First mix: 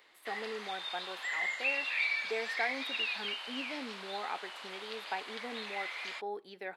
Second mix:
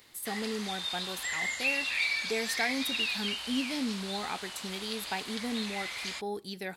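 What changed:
speech: add high shelf 3200 Hz +9 dB; master: remove three-band isolator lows -23 dB, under 360 Hz, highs -15 dB, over 3300 Hz

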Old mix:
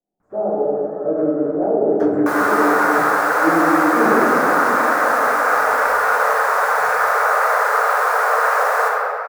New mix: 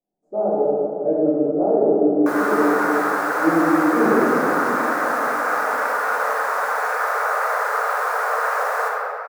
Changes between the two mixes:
first sound: muted; second sound -5.0 dB

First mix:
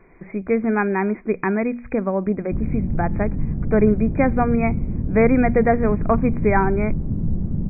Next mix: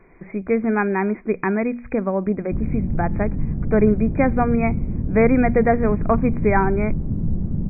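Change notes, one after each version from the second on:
none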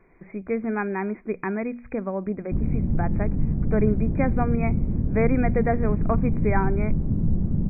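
speech -6.5 dB

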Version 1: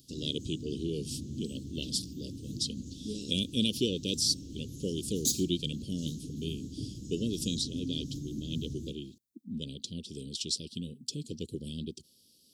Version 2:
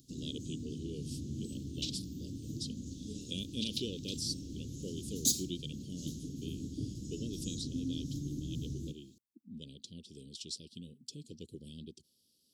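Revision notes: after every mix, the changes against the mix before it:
speech -9.5 dB; second sound +12.0 dB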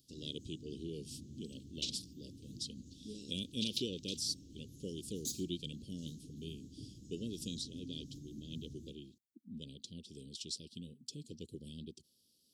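first sound -11.5 dB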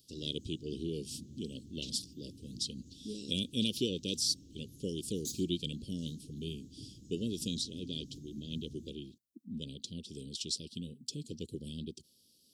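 speech +6.0 dB; second sound -7.5 dB

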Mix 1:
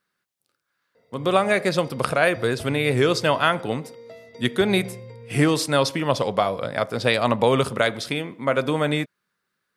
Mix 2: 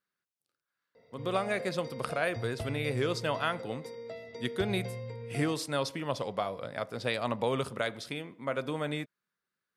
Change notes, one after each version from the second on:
speech -11.5 dB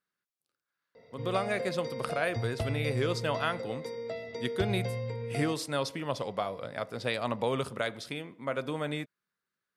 background +5.0 dB

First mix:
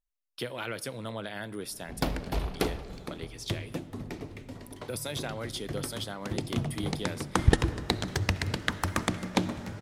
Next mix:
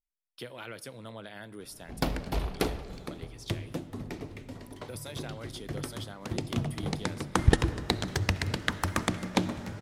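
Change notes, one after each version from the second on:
speech -6.5 dB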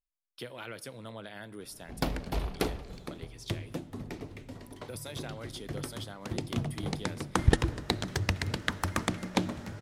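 background: send -6.5 dB

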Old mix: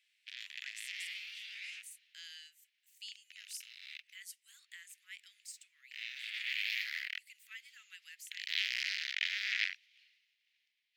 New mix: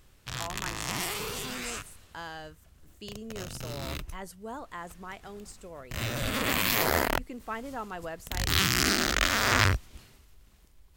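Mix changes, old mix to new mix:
background: remove air absorption 300 m; master: remove steep high-pass 2000 Hz 48 dB/oct

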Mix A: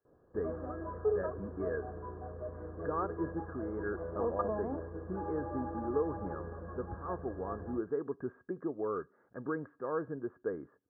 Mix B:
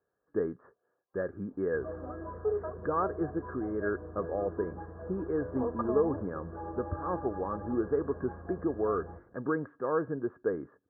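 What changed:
speech +5.5 dB; background: entry +1.40 s

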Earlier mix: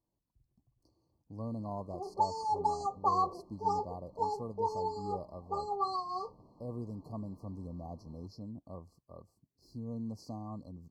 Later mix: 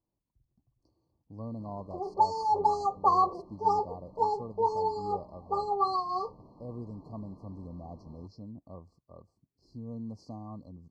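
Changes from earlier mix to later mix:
background +6.0 dB; master: add air absorption 89 m

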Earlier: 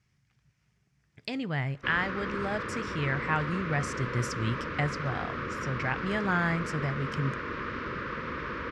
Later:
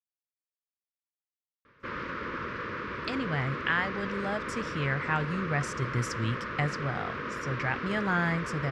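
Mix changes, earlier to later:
speech: entry +1.80 s; background: add low shelf 160 Hz -5 dB

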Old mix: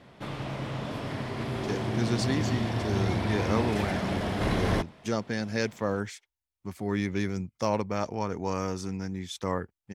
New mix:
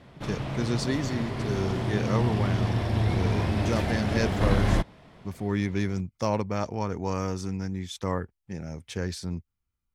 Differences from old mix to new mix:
speech: entry -1.40 s; master: add low shelf 83 Hz +11.5 dB

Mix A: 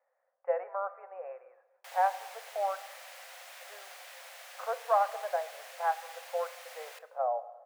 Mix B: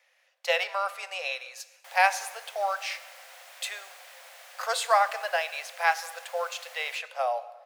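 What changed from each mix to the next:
speech: remove Gaussian blur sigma 7.8 samples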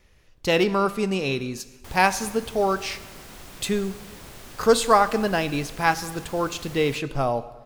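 master: remove rippled Chebyshev high-pass 510 Hz, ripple 6 dB

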